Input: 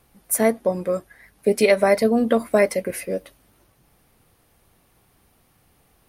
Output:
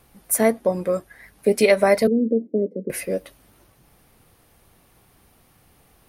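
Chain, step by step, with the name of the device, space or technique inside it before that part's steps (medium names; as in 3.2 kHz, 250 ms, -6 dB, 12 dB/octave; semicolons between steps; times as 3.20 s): 2.07–2.90 s: elliptic band-pass 180–460 Hz, stop band 50 dB; parallel compression (in parallel at -6 dB: compression, threshold -34 dBFS, peak gain reduction 20.5 dB)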